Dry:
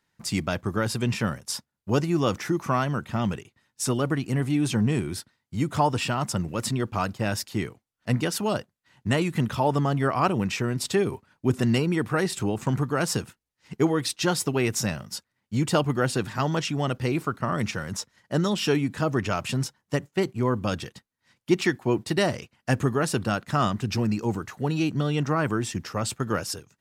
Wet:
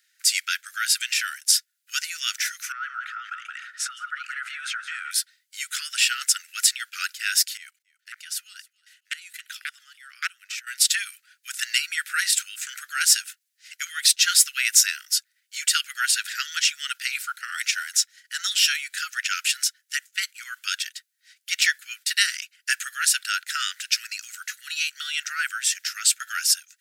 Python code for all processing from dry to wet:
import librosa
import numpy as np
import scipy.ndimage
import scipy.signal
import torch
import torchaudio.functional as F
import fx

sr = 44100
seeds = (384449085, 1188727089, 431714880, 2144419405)

y = fx.chain(x, sr, fx.bandpass_q(hz=1300.0, q=9.6),
    fx.echo_single(ms=171, db=-11.5),
    fx.env_flatten(amount_pct=70), at=(2.72, 5.11))
y = fx.chain(y, sr, fx.level_steps(step_db=21),
    fx.echo_feedback(ms=277, feedback_pct=36, wet_db=-23),
    fx.transformer_sat(knee_hz=970.0), at=(7.57, 10.67))
y = scipy.signal.sosfilt(scipy.signal.butter(16, 1400.0, 'highpass', fs=sr, output='sos'), y)
y = fx.high_shelf(y, sr, hz=3300.0, db=9.5)
y = F.gain(torch.from_numpy(y), 5.5).numpy()